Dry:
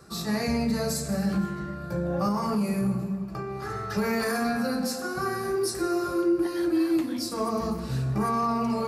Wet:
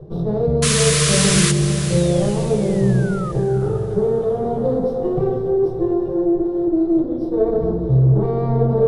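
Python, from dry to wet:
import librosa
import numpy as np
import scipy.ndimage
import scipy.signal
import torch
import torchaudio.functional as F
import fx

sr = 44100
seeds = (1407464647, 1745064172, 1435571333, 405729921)

y = fx.lower_of_two(x, sr, delay_ms=0.34)
y = fx.spec_paint(y, sr, seeds[0], shape='fall', start_s=1.89, length_s=1.43, low_hz=1200.0, high_hz=4300.0, level_db=-28.0)
y = fx.curve_eq(y, sr, hz=(100.0, 150.0, 220.0, 320.0, 460.0, 1500.0, 2500.0, 3700.0, 7300.0, 10000.0), db=(0, 11, -7, 6, 13, -7, -23, -6, -26, -21))
y = fx.rider(y, sr, range_db=4, speed_s=0.5)
y = fx.tilt_eq(y, sr, slope=-3.0)
y = fx.spec_paint(y, sr, seeds[1], shape='noise', start_s=0.62, length_s=0.9, low_hz=970.0, high_hz=11000.0, level_db=-18.0)
y = fx.echo_diffused(y, sr, ms=488, feedback_pct=46, wet_db=-11.0)
y = y * librosa.db_to_amplitude(-1.5)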